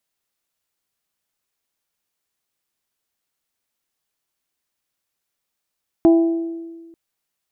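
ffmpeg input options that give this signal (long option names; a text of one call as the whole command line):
ffmpeg -f lavfi -i "aevalsrc='0.422*pow(10,-3*t/1.52)*sin(2*PI*332*t)+0.133*pow(10,-3*t/0.936)*sin(2*PI*664*t)+0.0422*pow(10,-3*t/0.824)*sin(2*PI*796.8*t)+0.0133*pow(10,-3*t/0.704)*sin(2*PI*996*t)':duration=0.89:sample_rate=44100" out.wav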